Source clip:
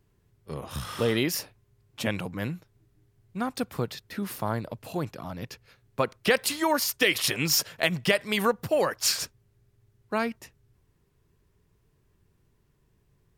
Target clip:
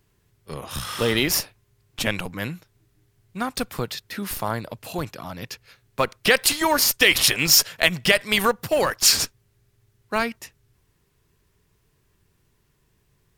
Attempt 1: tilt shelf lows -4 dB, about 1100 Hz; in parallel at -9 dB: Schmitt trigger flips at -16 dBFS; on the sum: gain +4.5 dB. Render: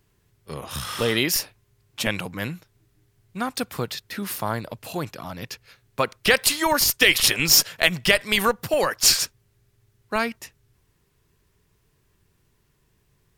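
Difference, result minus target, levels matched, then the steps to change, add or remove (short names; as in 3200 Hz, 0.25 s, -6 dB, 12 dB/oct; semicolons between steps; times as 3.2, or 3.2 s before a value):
Schmitt trigger: distortion +12 dB
change: Schmitt trigger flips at -24 dBFS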